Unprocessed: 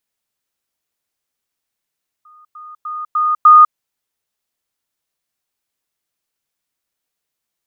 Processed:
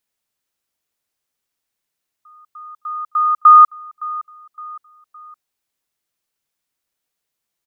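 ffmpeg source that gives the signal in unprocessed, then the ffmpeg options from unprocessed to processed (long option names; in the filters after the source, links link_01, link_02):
-f lavfi -i "aevalsrc='pow(10,(-42.5+10*floor(t/0.3))/20)*sin(2*PI*1230*t)*clip(min(mod(t,0.3),0.2-mod(t,0.3))/0.005,0,1)':duration=1.5:sample_rate=44100"
-af "aecho=1:1:564|1128|1692:0.112|0.0482|0.0207"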